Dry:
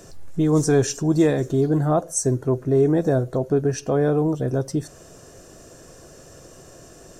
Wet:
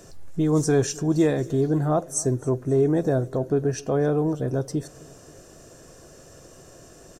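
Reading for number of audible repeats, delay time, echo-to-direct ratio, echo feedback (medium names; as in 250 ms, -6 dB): 3, 267 ms, -21.5 dB, 56%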